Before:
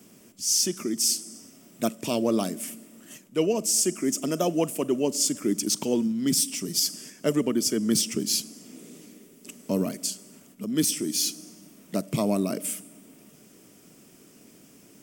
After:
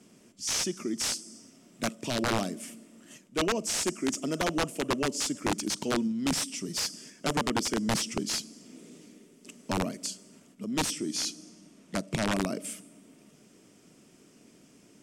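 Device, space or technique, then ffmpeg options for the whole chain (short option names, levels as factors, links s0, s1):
overflowing digital effects unit: -filter_complex "[0:a]aeval=exprs='(mod(6.68*val(0)+1,2)-1)/6.68':c=same,lowpass=8100,asettb=1/sr,asplit=3[s0][s1][s2];[s0]atrim=end=10.924[s3];[s1]atrim=start=10.92:end=12.4,asetpts=PTS-STARTPTS,afade=t=in:d=0.004:c=qsin,afade=t=out:st=1.476:d=0.004:c=qsin,lowpass=11000[s4];[s2]atrim=start=12.396[s5];[s3][s4]acrossfade=d=0.004:c1=hsin:c2=qsin[s6];[s6][s5]acrossfade=d=0.004:c1=qsin:c2=hsin,volume=0.668"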